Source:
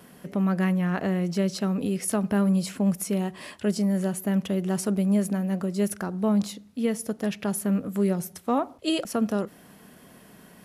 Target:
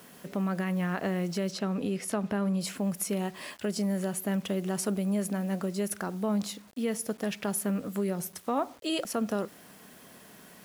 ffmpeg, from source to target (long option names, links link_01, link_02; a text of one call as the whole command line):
ffmpeg -i in.wav -filter_complex "[0:a]acrusher=bits=8:mix=0:aa=0.000001,asettb=1/sr,asplit=3[link_01][link_02][link_03];[link_01]atrim=end=1.514[link_04];[link_02]atrim=start=1.51:end=2.61,asetpts=PTS-STARTPTS,afade=type=in:duration=0.004:curve=qsin,afade=type=out:start_time=1.096:duration=0.004:curve=qsin,highshelf=frequency=7700:gain=-12[link_05];[link_03]atrim=start=2.606[link_06];[link_04][link_05]acrossfade=duration=0.004:curve1=hsin:curve2=qsin[link_07];[link_07][link_06]acrossfade=duration=0.004:curve1=qsin:curve2=hsin,alimiter=limit=-18.5dB:level=0:latency=1:release=91,lowshelf=frequency=260:gain=-7" out.wav